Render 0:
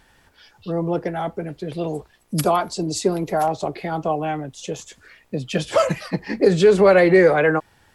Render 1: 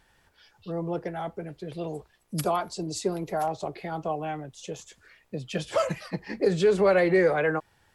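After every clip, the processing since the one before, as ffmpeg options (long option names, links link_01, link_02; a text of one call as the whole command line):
ffmpeg -i in.wav -af "equalizer=frequency=260:width_type=o:width=0.34:gain=-5,volume=-7.5dB" out.wav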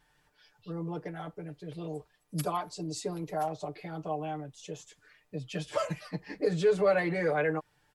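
ffmpeg -i in.wav -af "aecho=1:1:6.7:0.87,volume=-7.5dB" out.wav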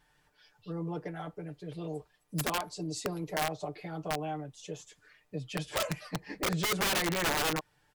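ffmpeg -i in.wav -af "aeval=exprs='(mod(15.8*val(0)+1,2)-1)/15.8':channel_layout=same" out.wav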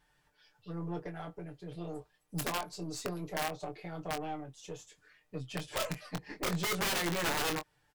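ffmpeg -i in.wav -filter_complex "[0:a]aeval=exprs='0.0668*(cos(1*acos(clip(val(0)/0.0668,-1,1)))-cos(1*PI/2))+0.00473*(cos(6*acos(clip(val(0)/0.0668,-1,1)))-cos(6*PI/2))':channel_layout=same,asplit=2[link_01][link_02];[link_02]adelay=23,volume=-8dB[link_03];[link_01][link_03]amix=inputs=2:normalize=0,volume=-3.5dB" out.wav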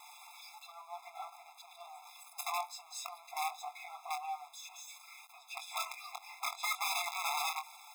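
ffmpeg -i in.wav -af "aeval=exprs='val(0)+0.5*0.00668*sgn(val(0))':channel_layout=same,afftfilt=real='re*eq(mod(floor(b*sr/1024/680),2),1)':imag='im*eq(mod(floor(b*sr/1024/680),2),1)':win_size=1024:overlap=0.75" out.wav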